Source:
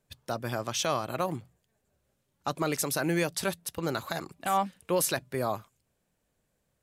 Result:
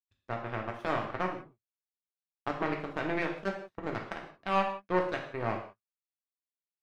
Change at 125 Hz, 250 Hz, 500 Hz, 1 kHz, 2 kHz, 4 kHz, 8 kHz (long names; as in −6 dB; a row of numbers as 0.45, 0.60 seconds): −4.5 dB, −3.0 dB, −2.5 dB, −1.5 dB, −0.5 dB, −10.5 dB, below −25 dB